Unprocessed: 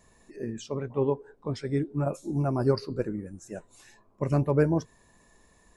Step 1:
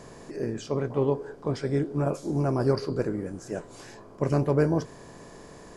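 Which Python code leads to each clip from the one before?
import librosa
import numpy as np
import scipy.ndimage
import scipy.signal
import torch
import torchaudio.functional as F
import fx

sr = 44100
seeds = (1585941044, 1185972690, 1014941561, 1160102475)

y = fx.bin_compress(x, sr, power=0.6)
y = y * 10.0 ** (-1.5 / 20.0)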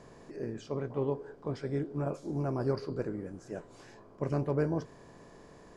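y = fx.high_shelf(x, sr, hz=7000.0, db=-10.5)
y = y * 10.0 ** (-7.0 / 20.0)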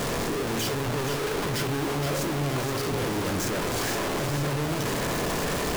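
y = np.sign(x) * np.sqrt(np.mean(np.square(x)))
y = fx.echo_split(y, sr, split_hz=550.0, low_ms=83, high_ms=472, feedback_pct=52, wet_db=-7.5)
y = y * 10.0 ** (7.0 / 20.0)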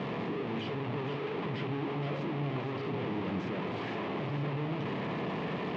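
y = fx.cabinet(x, sr, low_hz=110.0, low_slope=24, high_hz=3000.0, hz=(190.0, 560.0, 1500.0), db=(5, -4, -9))
y = y * 10.0 ** (-6.0 / 20.0)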